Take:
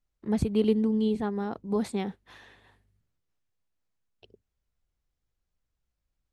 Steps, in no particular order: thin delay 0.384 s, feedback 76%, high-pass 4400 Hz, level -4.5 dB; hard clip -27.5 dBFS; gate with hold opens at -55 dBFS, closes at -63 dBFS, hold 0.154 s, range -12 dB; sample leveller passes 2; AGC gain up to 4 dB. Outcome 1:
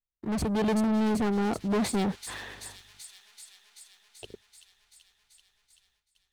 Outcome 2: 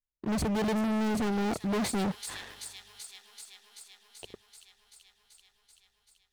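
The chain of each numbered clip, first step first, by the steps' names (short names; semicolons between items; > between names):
hard clip > sample leveller > thin delay > gate with hold > AGC; sample leveller > thin delay > gate with hold > AGC > hard clip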